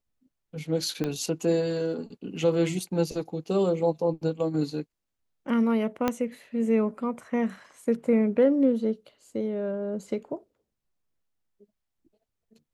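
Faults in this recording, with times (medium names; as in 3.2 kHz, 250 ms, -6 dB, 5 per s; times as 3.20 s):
1.04 s: pop -16 dBFS
6.08 s: pop -11 dBFS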